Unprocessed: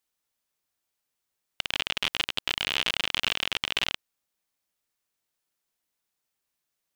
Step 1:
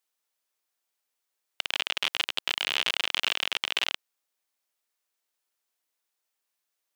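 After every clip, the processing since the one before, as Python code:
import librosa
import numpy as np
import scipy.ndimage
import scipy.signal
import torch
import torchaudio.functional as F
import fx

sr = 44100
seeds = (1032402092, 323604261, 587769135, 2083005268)

y = scipy.signal.sosfilt(scipy.signal.butter(2, 370.0, 'highpass', fs=sr, output='sos'), x)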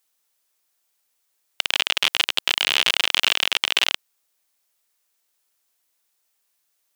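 y = fx.high_shelf(x, sr, hz=4800.0, db=5.5)
y = y * 10.0 ** (6.5 / 20.0)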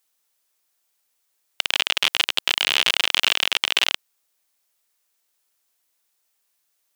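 y = x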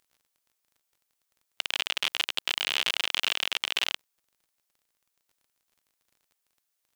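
y = fx.dmg_crackle(x, sr, seeds[0], per_s=28.0, level_db=-43.0)
y = y * 10.0 ** (-8.0 / 20.0)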